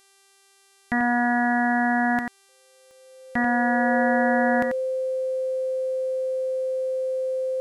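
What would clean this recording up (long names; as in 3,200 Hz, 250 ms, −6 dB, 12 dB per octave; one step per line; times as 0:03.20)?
click removal
hum removal 392.8 Hz, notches 29
notch filter 520 Hz, Q 30
echo removal 90 ms −7 dB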